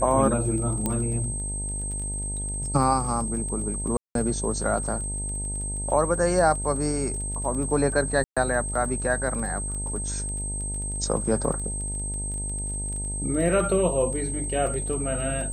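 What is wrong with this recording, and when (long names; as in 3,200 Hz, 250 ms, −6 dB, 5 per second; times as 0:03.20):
mains buzz 50 Hz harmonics 19 −32 dBFS
surface crackle 19 per second −33 dBFS
whistle 8,300 Hz −31 dBFS
0:00.86: click −11 dBFS
0:03.97–0:04.15: drop-out 182 ms
0:08.24–0:08.37: drop-out 126 ms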